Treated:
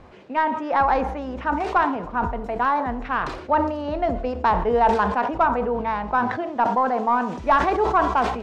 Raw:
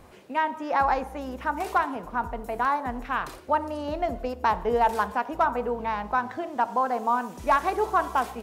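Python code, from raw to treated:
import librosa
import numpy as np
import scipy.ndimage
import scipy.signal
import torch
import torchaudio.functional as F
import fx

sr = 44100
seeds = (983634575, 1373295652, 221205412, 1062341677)

y = fx.tracing_dist(x, sr, depth_ms=0.028)
y = fx.air_absorb(y, sr, metres=150.0)
y = fx.sustainer(y, sr, db_per_s=62.0)
y = F.gain(torch.from_numpy(y), 4.0).numpy()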